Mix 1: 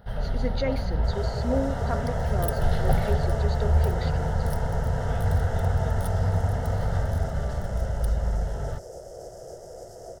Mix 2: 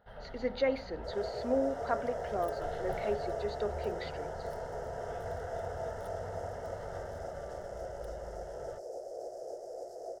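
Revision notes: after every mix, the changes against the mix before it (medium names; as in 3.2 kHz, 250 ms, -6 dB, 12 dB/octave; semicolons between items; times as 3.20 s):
first sound -10.0 dB; master: add tone controls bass -13 dB, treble -11 dB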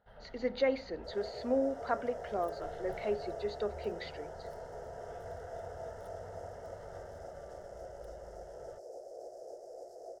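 first sound -5.0 dB; second sound -5.0 dB; reverb: off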